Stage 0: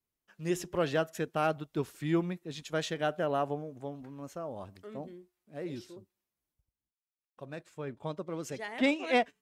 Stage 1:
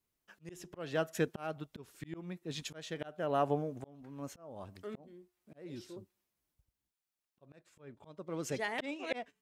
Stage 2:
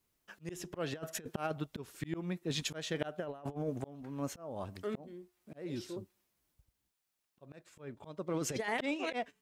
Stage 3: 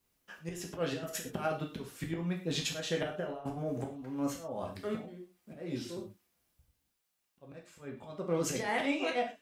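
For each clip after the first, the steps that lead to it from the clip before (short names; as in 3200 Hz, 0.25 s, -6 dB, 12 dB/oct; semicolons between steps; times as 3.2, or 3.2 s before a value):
auto swell 0.546 s; gain +3.5 dB
negative-ratio compressor -38 dBFS, ratio -0.5; gain +3 dB
non-linear reverb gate 0.15 s falling, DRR -0.5 dB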